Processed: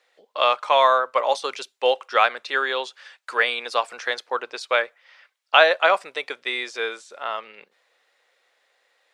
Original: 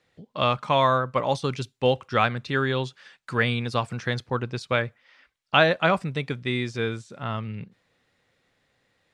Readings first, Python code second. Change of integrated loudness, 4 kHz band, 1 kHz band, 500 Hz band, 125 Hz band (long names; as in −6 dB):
+3.0 dB, +4.5 dB, +4.5 dB, +2.5 dB, below −35 dB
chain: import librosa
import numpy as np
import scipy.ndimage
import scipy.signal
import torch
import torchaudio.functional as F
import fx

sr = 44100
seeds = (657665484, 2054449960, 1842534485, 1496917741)

y = scipy.signal.sosfilt(scipy.signal.butter(4, 490.0, 'highpass', fs=sr, output='sos'), x)
y = y * librosa.db_to_amplitude(4.5)